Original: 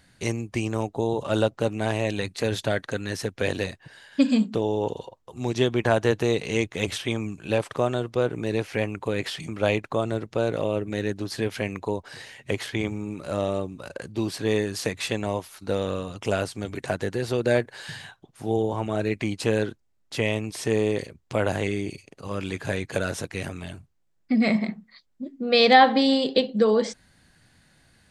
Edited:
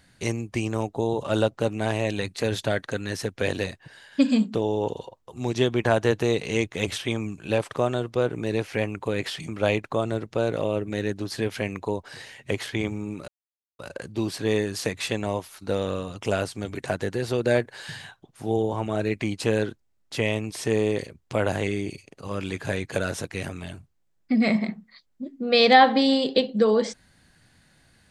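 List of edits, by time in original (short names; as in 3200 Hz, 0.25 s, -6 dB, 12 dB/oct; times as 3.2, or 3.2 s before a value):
13.28–13.79 mute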